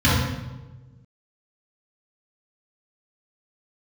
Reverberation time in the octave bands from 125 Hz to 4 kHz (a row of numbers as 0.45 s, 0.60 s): 1.8 s, 1.5 s, 1.4 s, 1.1 s, 0.85 s, 0.80 s